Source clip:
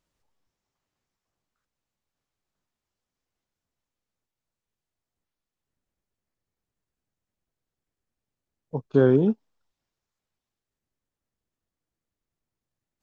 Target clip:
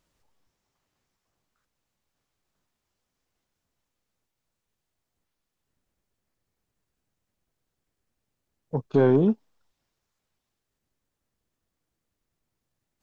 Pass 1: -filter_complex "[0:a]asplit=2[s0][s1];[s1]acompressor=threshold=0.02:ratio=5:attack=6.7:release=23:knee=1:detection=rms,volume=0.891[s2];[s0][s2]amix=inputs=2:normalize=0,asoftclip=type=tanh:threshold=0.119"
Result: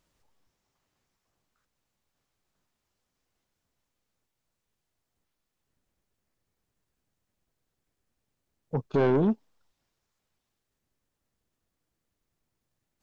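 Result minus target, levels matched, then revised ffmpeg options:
saturation: distortion +8 dB
-filter_complex "[0:a]asplit=2[s0][s1];[s1]acompressor=threshold=0.02:ratio=5:attack=6.7:release=23:knee=1:detection=rms,volume=0.891[s2];[s0][s2]amix=inputs=2:normalize=0,asoftclip=type=tanh:threshold=0.299"

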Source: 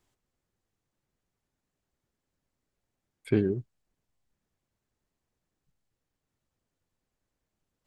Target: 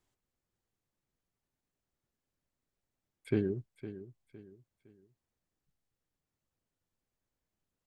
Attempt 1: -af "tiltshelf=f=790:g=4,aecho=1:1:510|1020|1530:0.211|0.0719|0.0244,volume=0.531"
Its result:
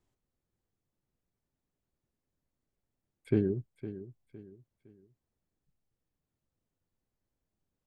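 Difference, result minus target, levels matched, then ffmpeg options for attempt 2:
1 kHz band -3.0 dB
-af "aecho=1:1:510|1020|1530:0.211|0.0719|0.0244,volume=0.531"

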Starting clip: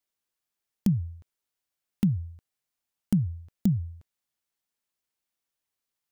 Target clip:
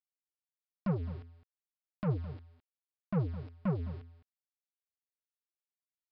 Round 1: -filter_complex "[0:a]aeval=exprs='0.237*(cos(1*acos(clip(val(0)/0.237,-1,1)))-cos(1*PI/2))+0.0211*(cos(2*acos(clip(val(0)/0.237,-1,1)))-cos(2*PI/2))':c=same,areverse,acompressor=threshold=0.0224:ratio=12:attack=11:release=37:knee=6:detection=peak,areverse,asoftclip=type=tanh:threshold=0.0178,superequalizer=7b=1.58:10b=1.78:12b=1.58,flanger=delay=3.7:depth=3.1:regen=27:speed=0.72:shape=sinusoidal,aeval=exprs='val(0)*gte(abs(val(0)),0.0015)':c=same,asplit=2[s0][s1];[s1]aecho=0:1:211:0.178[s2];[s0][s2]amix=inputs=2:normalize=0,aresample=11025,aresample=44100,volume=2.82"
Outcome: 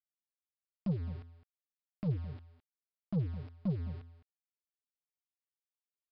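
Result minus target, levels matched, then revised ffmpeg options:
compression: peak gain reduction +9 dB
-filter_complex "[0:a]aeval=exprs='0.237*(cos(1*acos(clip(val(0)/0.237,-1,1)))-cos(1*PI/2))+0.0211*(cos(2*acos(clip(val(0)/0.237,-1,1)))-cos(2*PI/2))':c=same,areverse,acompressor=threshold=0.0708:ratio=12:attack=11:release=37:knee=6:detection=peak,areverse,asoftclip=type=tanh:threshold=0.0178,superequalizer=7b=1.58:10b=1.78:12b=1.58,flanger=delay=3.7:depth=3.1:regen=27:speed=0.72:shape=sinusoidal,aeval=exprs='val(0)*gte(abs(val(0)),0.0015)':c=same,asplit=2[s0][s1];[s1]aecho=0:1:211:0.178[s2];[s0][s2]amix=inputs=2:normalize=0,aresample=11025,aresample=44100,volume=2.82"

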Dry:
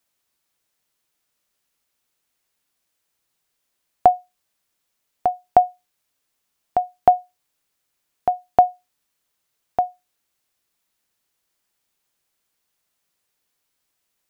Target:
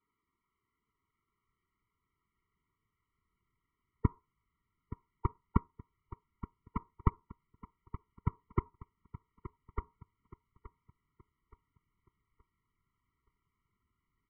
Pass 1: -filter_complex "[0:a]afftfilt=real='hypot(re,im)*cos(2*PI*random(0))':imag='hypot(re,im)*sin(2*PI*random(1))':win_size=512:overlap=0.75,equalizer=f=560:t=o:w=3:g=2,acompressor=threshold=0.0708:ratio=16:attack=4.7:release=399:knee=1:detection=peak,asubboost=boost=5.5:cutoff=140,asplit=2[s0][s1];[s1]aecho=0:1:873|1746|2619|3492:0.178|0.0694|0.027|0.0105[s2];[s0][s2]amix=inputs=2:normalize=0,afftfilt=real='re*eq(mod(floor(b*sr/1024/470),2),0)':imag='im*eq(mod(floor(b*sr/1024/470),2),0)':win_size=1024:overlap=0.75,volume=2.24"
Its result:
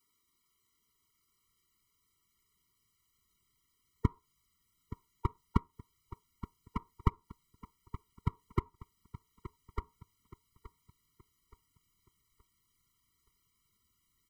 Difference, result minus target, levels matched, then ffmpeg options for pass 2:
2 kHz band +2.5 dB
-filter_complex "[0:a]afftfilt=real='hypot(re,im)*cos(2*PI*random(0))':imag='hypot(re,im)*sin(2*PI*random(1))':win_size=512:overlap=0.75,equalizer=f=560:t=o:w=3:g=2,acompressor=threshold=0.0708:ratio=16:attack=4.7:release=399:knee=1:detection=peak,lowpass=f=2100:w=0.5412,lowpass=f=2100:w=1.3066,asubboost=boost=5.5:cutoff=140,asplit=2[s0][s1];[s1]aecho=0:1:873|1746|2619|3492:0.178|0.0694|0.027|0.0105[s2];[s0][s2]amix=inputs=2:normalize=0,afftfilt=real='re*eq(mod(floor(b*sr/1024/470),2),0)':imag='im*eq(mod(floor(b*sr/1024/470),2),0)':win_size=1024:overlap=0.75,volume=2.24"

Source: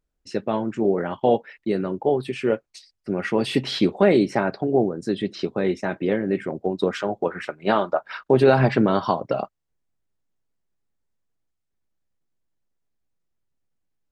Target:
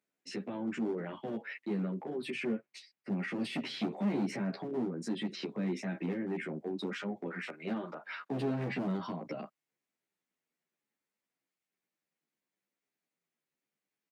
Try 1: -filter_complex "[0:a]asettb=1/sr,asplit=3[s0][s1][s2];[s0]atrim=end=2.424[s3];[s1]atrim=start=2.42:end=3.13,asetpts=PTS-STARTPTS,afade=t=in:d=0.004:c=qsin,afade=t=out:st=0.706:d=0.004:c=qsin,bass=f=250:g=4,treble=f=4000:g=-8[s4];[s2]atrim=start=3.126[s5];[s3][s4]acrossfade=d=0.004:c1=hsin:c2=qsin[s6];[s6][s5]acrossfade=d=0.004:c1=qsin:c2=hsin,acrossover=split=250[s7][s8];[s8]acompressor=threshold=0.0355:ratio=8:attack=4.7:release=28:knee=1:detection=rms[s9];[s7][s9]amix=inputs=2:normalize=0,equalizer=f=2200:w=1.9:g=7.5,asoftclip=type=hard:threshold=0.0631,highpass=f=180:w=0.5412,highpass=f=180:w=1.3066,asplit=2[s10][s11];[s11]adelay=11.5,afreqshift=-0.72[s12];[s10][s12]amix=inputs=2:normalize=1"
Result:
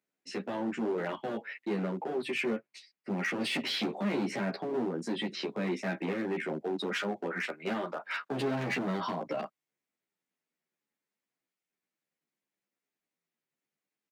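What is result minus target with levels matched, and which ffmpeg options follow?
compression: peak gain reduction -9.5 dB
-filter_complex "[0:a]asettb=1/sr,asplit=3[s0][s1][s2];[s0]atrim=end=2.424[s3];[s1]atrim=start=2.42:end=3.13,asetpts=PTS-STARTPTS,afade=t=in:d=0.004:c=qsin,afade=t=out:st=0.706:d=0.004:c=qsin,bass=f=250:g=4,treble=f=4000:g=-8[s4];[s2]atrim=start=3.126[s5];[s3][s4]acrossfade=d=0.004:c1=hsin:c2=qsin[s6];[s6][s5]acrossfade=d=0.004:c1=qsin:c2=hsin,acrossover=split=250[s7][s8];[s8]acompressor=threshold=0.01:ratio=8:attack=4.7:release=28:knee=1:detection=rms[s9];[s7][s9]amix=inputs=2:normalize=0,equalizer=f=2200:w=1.9:g=7.5,asoftclip=type=hard:threshold=0.0631,highpass=f=180:w=0.5412,highpass=f=180:w=1.3066,asplit=2[s10][s11];[s11]adelay=11.5,afreqshift=-0.72[s12];[s10][s12]amix=inputs=2:normalize=1"

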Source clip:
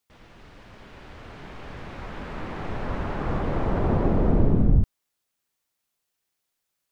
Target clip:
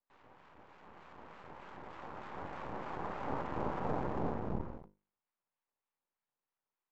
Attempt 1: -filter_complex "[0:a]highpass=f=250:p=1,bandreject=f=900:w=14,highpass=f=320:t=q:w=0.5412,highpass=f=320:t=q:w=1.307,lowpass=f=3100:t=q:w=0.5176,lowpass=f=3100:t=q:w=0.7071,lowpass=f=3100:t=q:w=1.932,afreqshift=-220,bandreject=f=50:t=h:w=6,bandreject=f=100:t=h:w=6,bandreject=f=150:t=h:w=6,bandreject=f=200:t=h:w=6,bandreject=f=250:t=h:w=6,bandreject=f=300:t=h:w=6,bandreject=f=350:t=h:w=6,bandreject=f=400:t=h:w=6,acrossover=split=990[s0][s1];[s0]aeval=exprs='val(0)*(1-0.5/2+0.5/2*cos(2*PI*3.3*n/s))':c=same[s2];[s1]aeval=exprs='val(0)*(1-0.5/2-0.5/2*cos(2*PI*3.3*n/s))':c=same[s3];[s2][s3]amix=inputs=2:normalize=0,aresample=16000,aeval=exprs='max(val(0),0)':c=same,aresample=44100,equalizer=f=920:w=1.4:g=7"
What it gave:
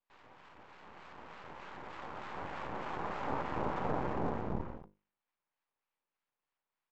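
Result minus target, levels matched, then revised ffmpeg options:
4 kHz band +4.0 dB
-filter_complex "[0:a]highpass=f=250:p=1,highshelf=f=2000:g=-10.5,bandreject=f=900:w=14,highpass=f=320:t=q:w=0.5412,highpass=f=320:t=q:w=1.307,lowpass=f=3100:t=q:w=0.5176,lowpass=f=3100:t=q:w=0.7071,lowpass=f=3100:t=q:w=1.932,afreqshift=-220,bandreject=f=50:t=h:w=6,bandreject=f=100:t=h:w=6,bandreject=f=150:t=h:w=6,bandreject=f=200:t=h:w=6,bandreject=f=250:t=h:w=6,bandreject=f=300:t=h:w=6,bandreject=f=350:t=h:w=6,bandreject=f=400:t=h:w=6,acrossover=split=990[s0][s1];[s0]aeval=exprs='val(0)*(1-0.5/2+0.5/2*cos(2*PI*3.3*n/s))':c=same[s2];[s1]aeval=exprs='val(0)*(1-0.5/2-0.5/2*cos(2*PI*3.3*n/s))':c=same[s3];[s2][s3]amix=inputs=2:normalize=0,aresample=16000,aeval=exprs='max(val(0),0)':c=same,aresample=44100,equalizer=f=920:w=1.4:g=7"

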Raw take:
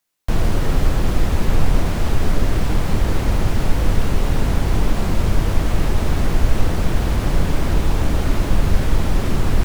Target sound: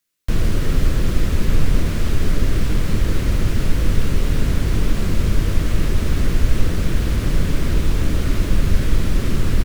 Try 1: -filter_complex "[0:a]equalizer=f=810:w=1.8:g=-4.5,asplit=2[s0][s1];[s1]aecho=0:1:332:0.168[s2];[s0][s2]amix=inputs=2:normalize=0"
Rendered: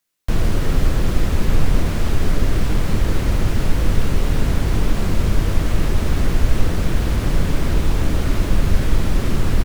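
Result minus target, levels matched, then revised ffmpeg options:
1 kHz band +3.5 dB
-filter_complex "[0:a]equalizer=f=810:w=1.8:g=-11.5,asplit=2[s0][s1];[s1]aecho=0:1:332:0.168[s2];[s0][s2]amix=inputs=2:normalize=0"

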